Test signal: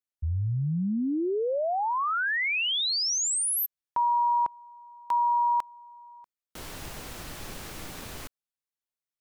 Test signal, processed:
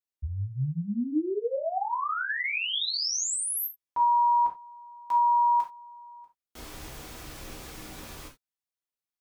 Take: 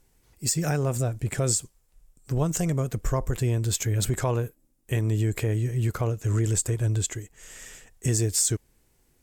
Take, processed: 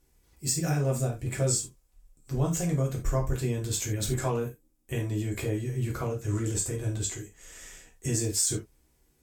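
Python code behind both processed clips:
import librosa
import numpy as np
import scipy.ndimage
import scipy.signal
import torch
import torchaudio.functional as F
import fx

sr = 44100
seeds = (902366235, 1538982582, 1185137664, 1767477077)

y = fx.rev_gated(x, sr, seeds[0], gate_ms=110, shape='falling', drr_db=-1.5)
y = y * 10.0 ** (-6.5 / 20.0)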